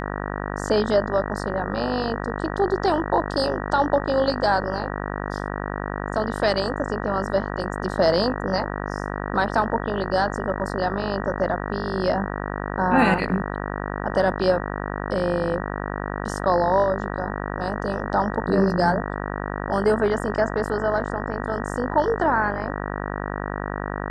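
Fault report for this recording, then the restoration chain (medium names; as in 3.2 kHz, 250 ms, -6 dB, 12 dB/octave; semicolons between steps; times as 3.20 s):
buzz 50 Hz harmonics 38 -29 dBFS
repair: de-hum 50 Hz, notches 38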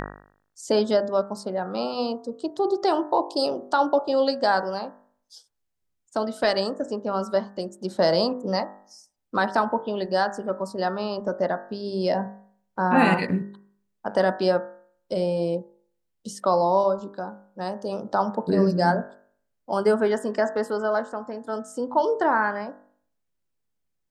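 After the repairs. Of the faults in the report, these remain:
nothing left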